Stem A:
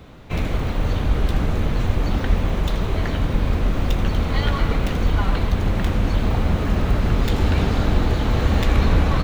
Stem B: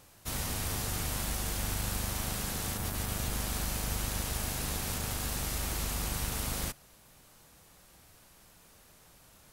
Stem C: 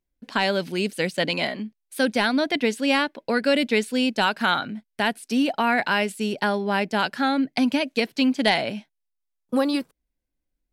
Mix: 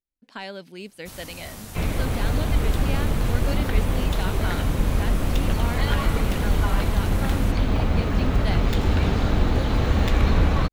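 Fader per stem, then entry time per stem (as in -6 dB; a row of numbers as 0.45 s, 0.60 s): -2.0 dB, -6.0 dB, -13.0 dB; 1.45 s, 0.80 s, 0.00 s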